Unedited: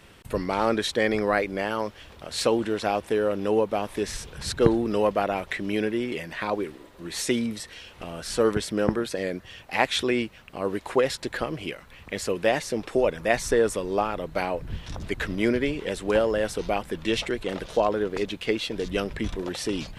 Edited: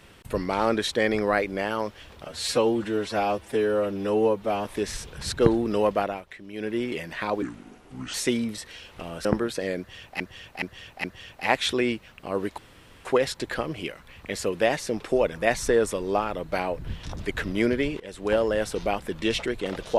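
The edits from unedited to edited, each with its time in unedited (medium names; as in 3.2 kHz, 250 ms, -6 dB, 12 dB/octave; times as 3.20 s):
2.25–3.85 s: stretch 1.5×
5.19–5.98 s: dip -13 dB, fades 0.25 s
6.62–7.16 s: speed 75%
8.27–8.81 s: delete
9.34–9.76 s: loop, 4 plays
10.88 s: insert room tone 0.47 s
15.83–16.23 s: fade in, from -17 dB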